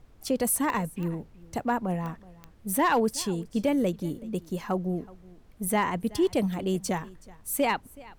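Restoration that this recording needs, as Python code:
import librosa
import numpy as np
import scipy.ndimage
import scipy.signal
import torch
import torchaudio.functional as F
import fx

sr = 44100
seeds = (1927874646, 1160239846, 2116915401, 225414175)

y = fx.fix_declip(x, sr, threshold_db=-17.0)
y = fx.fix_declick_ar(y, sr, threshold=10.0)
y = fx.noise_reduce(y, sr, print_start_s=5.1, print_end_s=5.6, reduce_db=21.0)
y = fx.fix_echo_inverse(y, sr, delay_ms=374, level_db=-22.0)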